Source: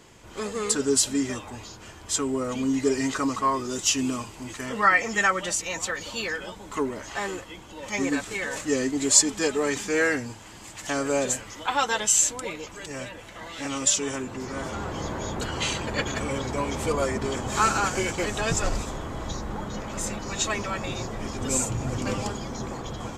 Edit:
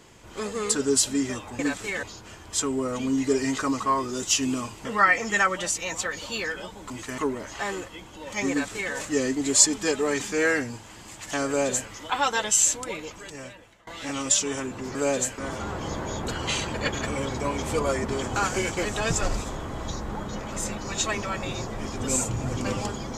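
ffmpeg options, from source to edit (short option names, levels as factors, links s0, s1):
-filter_complex "[0:a]asplit=10[s0][s1][s2][s3][s4][s5][s6][s7][s8][s9];[s0]atrim=end=1.592[s10];[s1]atrim=start=8.058:end=8.502[s11];[s2]atrim=start=1.588:end=4.412[s12];[s3]atrim=start=4.688:end=6.742[s13];[s4]atrim=start=4.408:end=4.692[s14];[s5]atrim=start=6.738:end=13.43,asetpts=PTS-STARTPTS,afade=t=out:st=5.882:d=0.81:silence=0.0749894[s15];[s6]atrim=start=13.43:end=14.512,asetpts=PTS-STARTPTS,afade=t=in:d=0.004:c=hsin:silence=0.0749894[s16];[s7]atrim=start=11.028:end=11.462[s17];[s8]atrim=start=14.508:end=17.492[s18];[s9]atrim=start=17.768[s19];[s10][s11]acrossfade=d=0.004:c1=hsin:c2=hsin[s20];[s20][s12]acrossfade=d=0.004:c1=hsin:c2=hsin[s21];[s21][s13]acrossfade=d=0.004:c1=hsin:c2=hsin[s22];[s22][s14]acrossfade=d=0.004:c1=hsin:c2=hsin[s23];[s15][s16]concat=n=2:v=0:a=1[s24];[s23][s24]acrossfade=d=0.004:c1=hsin:c2=hsin[s25];[s25][s17]acrossfade=d=0.004:c1=hsin:c2=hsin[s26];[s26][s18]acrossfade=d=0.004:c1=hsin:c2=hsin[s27];[s27][s19]acrossfade=d=0.004:c1=hsin:c2=hsin"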